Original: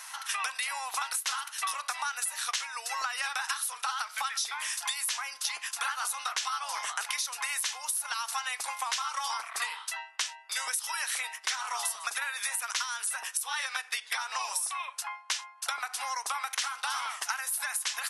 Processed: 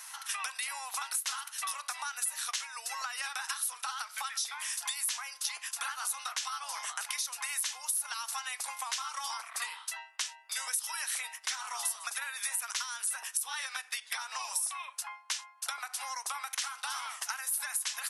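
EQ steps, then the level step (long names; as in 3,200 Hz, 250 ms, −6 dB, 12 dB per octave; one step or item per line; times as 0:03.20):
high-pass filter 430 Hz 12 dB per octave
high-shelf EQ 6,300 Hz +7 dB
−5.5 dB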